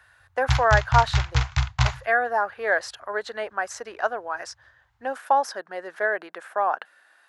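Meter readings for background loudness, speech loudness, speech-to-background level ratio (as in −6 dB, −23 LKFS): −25.5 LKFS, −25.5 LKFS, 0.0 dB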